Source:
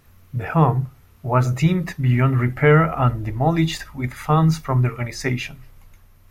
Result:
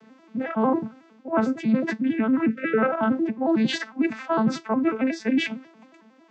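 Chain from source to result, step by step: arpeggiated vocoder minor triad, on A3, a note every 91 ms; HPF 140 Hz; spectral delete 2.49–2.78, 630–1300 Hz; LPF 6200 Hz 12 dB/oct; reverse; compressor 6:1, threshold -26 dBFS, peak gain reduction 16 dB; reverse; gain +6.5 dB

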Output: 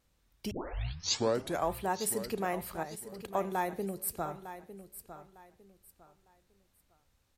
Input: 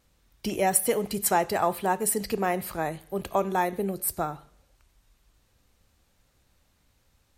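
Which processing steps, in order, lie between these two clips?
0.51 tape start 1.20 s; 2.83–3.33 level quantiser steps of 19 dB; feedback echo 0.904 s, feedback 27%, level -12.5 dB; gain -7 dB

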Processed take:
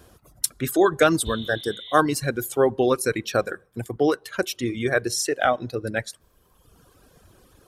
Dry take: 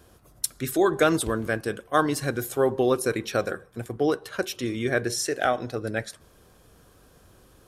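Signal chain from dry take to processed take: reverb removal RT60 1.3 s; spectral repair 1.28–1.95, 1900–4300 Hz both; gain +3.5 dB

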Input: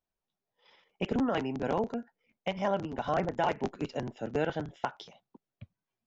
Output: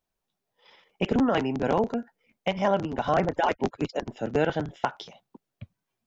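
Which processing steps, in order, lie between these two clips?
3.33–4.08 median-filter separation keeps percussive; gain +6 dB

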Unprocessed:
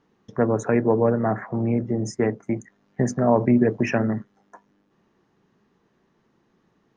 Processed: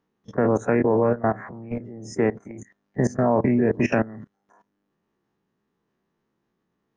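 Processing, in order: spectral dilation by 60 ms; level quantiser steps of 19 dB

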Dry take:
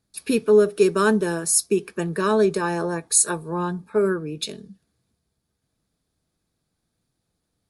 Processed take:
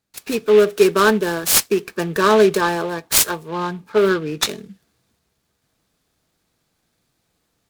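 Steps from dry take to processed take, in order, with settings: low shelf 330 Hz -8.5 dB; AGC gain up to 9.5 dB; noise-modulated delay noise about 2200 Hz, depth 0.031 ms; gain +1 dB

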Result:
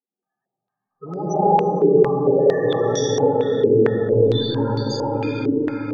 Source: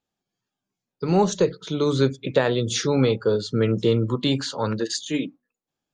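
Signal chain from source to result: Wiener smoothing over 15 samples; harmonic-percussive split percussive -9 dB; tilt shelf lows -9 dB, about 650 Hz; split-band echo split 760 Hz, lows 0.158 s, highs 0.35 s, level -9 dB; soft clip -26.5 dBFS, distortion -8 dB; loudest bins only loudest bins 8; 1.05–1.57 band noise 200–690 Hz -47 dBFS; reverb RT60 5.5 s, pre-delay 45 ms, DRR -11.5 dB; stepped low-pass 4.4 Hz 380–5700 Hz; gain +1 dB

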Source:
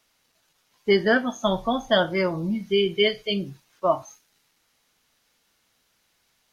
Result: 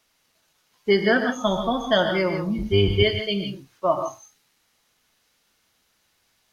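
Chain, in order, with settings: 2.58–3.03 octaver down 2 oct, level +4 dB; non-linear reverb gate 0.18 s rising, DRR 6 dB

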